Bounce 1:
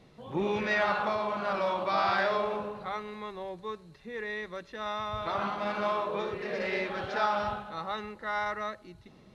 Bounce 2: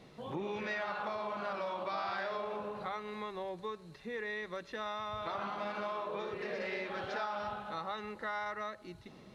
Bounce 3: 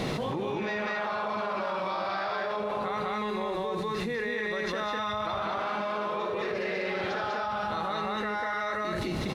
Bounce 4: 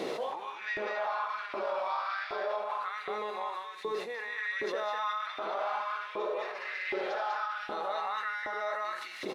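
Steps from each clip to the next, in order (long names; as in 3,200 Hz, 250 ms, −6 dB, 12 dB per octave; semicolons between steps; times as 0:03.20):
downward compressor 4 to 1, threshold −39 dBFS, peak gain reduction 13.5 dB; low-shelf EQ 110 Hz −7.5 dB; level +2.5 dB
on a send: loudspeakers that aren't time-aligned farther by 26 metres −12 dB, 68 metres 0 dB, 81 metres −8 dB; on the sum: envelope flattener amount 100%
auto-filter high-pass saw up 1.3 Hz 340–2,100 Hz; level −6 dB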